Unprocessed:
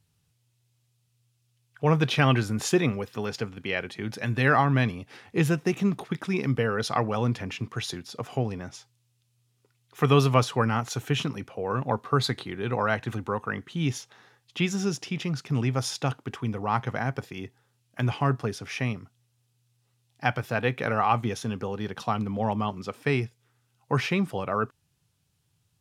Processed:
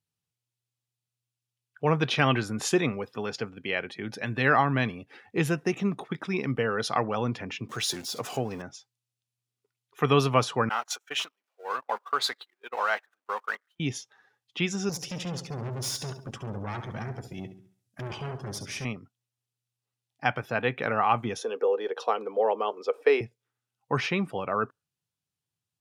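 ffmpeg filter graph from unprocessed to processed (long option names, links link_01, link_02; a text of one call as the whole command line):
ffmpeg -i in.wav -filter_complex "[0:a]asettb=1/sr,asplit=3[link_01][link_02][link_03];[link_01]atrim=end=7.694[link_04];[link_02]atrim=start=7.69:end=8.62,asetpts=PTS-STARTPTS,afade=type=in:duration=0.004:curve=qsin,afade=type=out:start_time=0.926:duration=0.004:curve=qsin,aeval=exprs='val(0)+0.5*0.0126*sgn(val(0))':channel_layout=same,bass=frequency=250:gain=-2,treble=frequency=4000:gain=6[link_05];[link_03]atrim=start=8.616[link_06];[link_04][link_05]acrossfade=duration=0.004:curve1=hsin:curve2=qsin[link_07];[link_07][link_06]acrossfade=duration=0.004:curve1=qsin:curve2=hsin,asettb=1/sr,asplit=3[link_08][link_09][link_10];[link_08]atrim=end=10.694[link_11];[link_09]atrim=start=10.69:end=13.8,asetpts=PTS-STARTPTS,afade=type=in:duration=0.004:curve=qsin,afade=type=out:start_time=3.106:duration=0.004:curve=qsin,aeval=exprs='val(0)+0.5*0.02*sgn(val(0))':channel_layout=same,highpass=700,agate=range=-29dB:threshold=-35dB:ratio=16:release=100:detection=peak[link_12];[link_10]atrim=start=13.796[link_13];[link_11][link_12]acrossfade=duration=0.004:curve1=hsin:curve2=qsin[link_14];[link_14][link_13]acrossfade=duration=0.004:curve1=qsin:curve2=hsin,asettb=1/sr,asplit=3[link_15][link_16][link_17];[link_15]atrim=end=14.894[link_18];[link_16]atrim=start=14.89:end=18.85,asetpts=PTS-STARTPTS,afade=type=in:duration=0.004:curve=qsin,afade=type=out:start_time=3.956:duration=0.004:curve=qsin,bass=frequency=250:gain=12,treble=frequency=4000:gain=10,aeval=exprs='(tanh(28.2*val(0)+0.7)-tanh(0.7))/28.2':channel_layout=same,aecho=1:1:69|138|207|276|345|414:0.355|0.185|0.0959|0.0499|0.0259|0.0135,atrim=end_sample=174636[link_19];[link_17]atrim=start=18.846[link_20];[link_18][link_19]acrossfade=duration=0.004:curve1=hsin:curve2=qsin[link_21];[link_21][link_20]acrossfade=duration=0.004:curve1=qsin:curve2=hsin,asettb=1/sr,asplit=3[link_22][link_23][link_24];[link_22]atrim=end=21.384[link_25];[link_23]atrim=start=21.38:end=23.21,asetpts=PTS-STARTPTS,afade=type=in:duration=0.004:curve=qsin,afade=type=out:start_time=1.826:duration=0.004:curve=qsin,highpass=frequency=340:width=0.5412,highpass=frequency=340:width=1.3066,equalizer=frequency=470:width=3.2:gain=14[link_26];[link_24]atrim=start=23.206[link_27];[link_25][link_26]acrossfade=duration=0.004:curve1=hsin:curve2=qsin[link_28];[link_28][link_27]acrossfade=duration=0.004:curve1=qsin:curve2=hsin,highpass=frequency=210:poles=1,afftdn=noise_reduction=14:noise_floor=-49" out.wav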